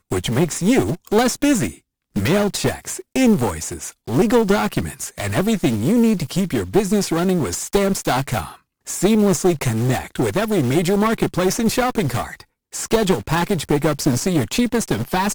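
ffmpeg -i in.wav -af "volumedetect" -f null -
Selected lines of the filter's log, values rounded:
mean_volume: -19.1 dB
max_volume: -3.8 dB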